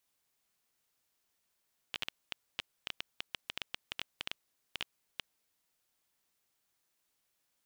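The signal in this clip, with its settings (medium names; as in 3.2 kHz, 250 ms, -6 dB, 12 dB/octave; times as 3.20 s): random clicks 7.8 per s -18 dBFS 3.52 s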